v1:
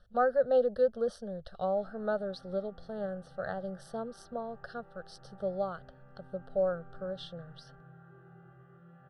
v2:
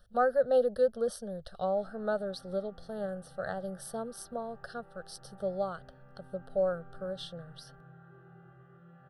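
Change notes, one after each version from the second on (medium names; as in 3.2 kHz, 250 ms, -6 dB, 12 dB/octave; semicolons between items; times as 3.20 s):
master: remove distance through air 100 m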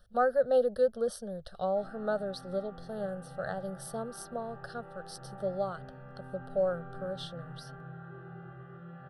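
background +8.5 dB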